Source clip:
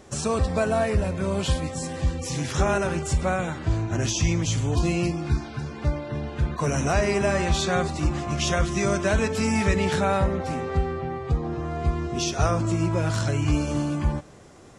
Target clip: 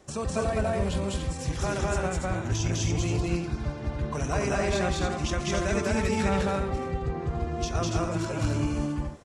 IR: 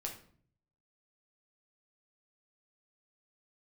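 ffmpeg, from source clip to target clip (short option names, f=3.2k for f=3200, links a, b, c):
-af "adynamicequalizer=threshold=0.00794:dfrequency=140:dqfactor=6:tfrequency=140:tqfactor=6:attack=5:release=100:ratio=0.375:range=2:mode=cutabove:tftype=bell,atempo=1.6,aecho=1:1:204.1|285.7:1|0.562,volume=-6.5dB"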